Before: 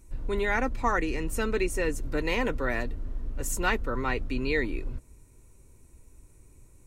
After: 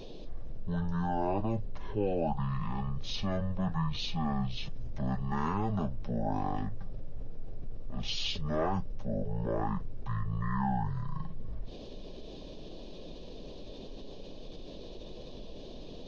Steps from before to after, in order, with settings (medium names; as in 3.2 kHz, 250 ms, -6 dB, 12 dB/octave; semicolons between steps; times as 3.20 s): band noise 400–1400 Hz -58 dBFS; speed mistake 78 rpm record played at 33 rpm; level flattener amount 50%; trim -6.5 dB